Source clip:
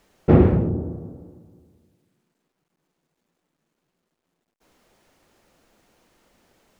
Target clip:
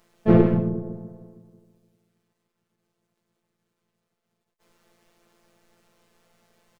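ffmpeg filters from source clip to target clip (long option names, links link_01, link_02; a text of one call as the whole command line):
ffmpeg -i in.wav -filter_complex "[0:a]afftfilt=real='hypot(re,im)*cos(PI*b)':imag='0':win_size=1024:overlap=0.75,asplit=3[link_01][link_02][link_03];[link_02]asetrate=29433,aresample=44100,atempo=1.49831,volume=-5dB[link_04];[link_03]asetrate=55563,aresample=44100,atempo=0.793701,volume=-3dB[link_05];[link_01][link_04][link_05]amix=inputs=3:normalize=0,volume=-1.5dB" out.wav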